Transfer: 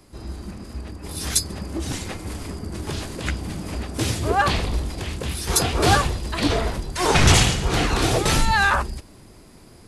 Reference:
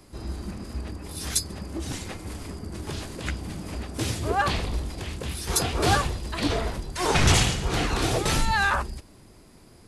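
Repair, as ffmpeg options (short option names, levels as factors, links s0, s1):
-af "asetnsamples=n=441:p=0,asendcmd='1.03 volume volume -4.5dB',volume=1"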